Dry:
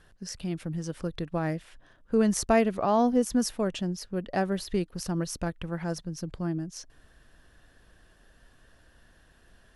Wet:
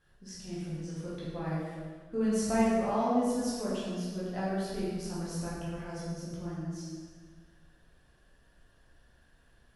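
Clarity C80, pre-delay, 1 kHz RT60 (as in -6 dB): 0.0 dB, 10 ms, 1.6 s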